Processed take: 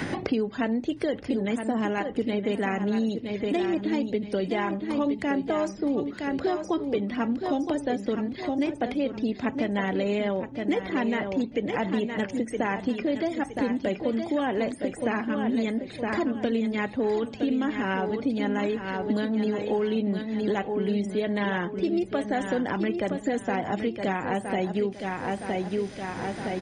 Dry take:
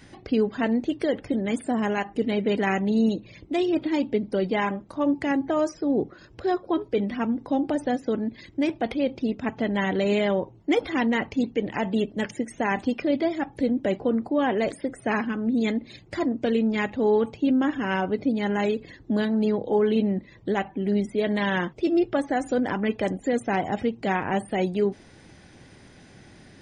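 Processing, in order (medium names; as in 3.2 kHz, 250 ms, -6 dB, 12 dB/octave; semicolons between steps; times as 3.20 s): feedback delay 966 ms, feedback 32%, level -8.5 dB; three bands compressed up and down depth 100%; trim -3.5 dB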